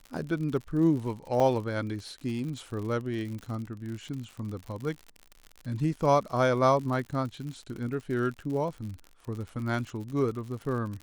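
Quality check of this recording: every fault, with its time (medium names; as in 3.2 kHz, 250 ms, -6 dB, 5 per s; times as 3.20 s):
crackle 66 per s -36 dBFS
1.40 s: dropout 2.5 ms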